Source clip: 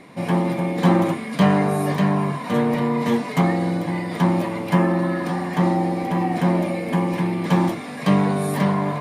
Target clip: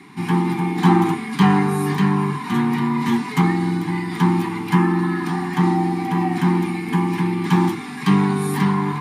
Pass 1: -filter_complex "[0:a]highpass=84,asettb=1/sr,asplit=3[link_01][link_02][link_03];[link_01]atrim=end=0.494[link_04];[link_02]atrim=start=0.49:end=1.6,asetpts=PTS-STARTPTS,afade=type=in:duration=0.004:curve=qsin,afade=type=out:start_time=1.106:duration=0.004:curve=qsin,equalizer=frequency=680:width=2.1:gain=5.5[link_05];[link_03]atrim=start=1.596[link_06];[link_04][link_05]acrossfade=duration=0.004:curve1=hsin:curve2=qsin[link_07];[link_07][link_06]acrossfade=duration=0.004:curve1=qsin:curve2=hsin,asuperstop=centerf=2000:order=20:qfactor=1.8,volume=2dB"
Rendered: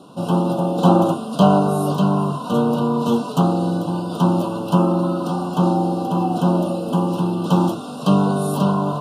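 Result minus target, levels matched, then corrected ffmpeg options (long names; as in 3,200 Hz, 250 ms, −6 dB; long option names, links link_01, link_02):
2,000 Hz band −12.5 dB
-filter_complex "[0:a]highpass=84,asettb=1/sr,asplit=3[link_01][link_02][link_03];[link_01]atrim=end=0.494[link_04];[link_02]atrim=start=0.49:end=1.6,asetpts=PTS-STARTPTS,afade=type=in:duration=0.004:curve=qsin,afade=type=out:start_time=1.106:duration=0.004:curve=qsin,equalizer=frequency=680:width=2.1:gain=5.5[link_05];[link_03]atrim=start=1.596[link_06];[link_04][link_05]acrossfade=duration=0.004:curve1=hsin:curve2=qsin[link_07];[link_07][link_06]acrossfade=duration=0.004:curve1=qsin:curve2=hsin,asuperstop=centerf=570:order=20:qfactor=1.8,volume=2dB"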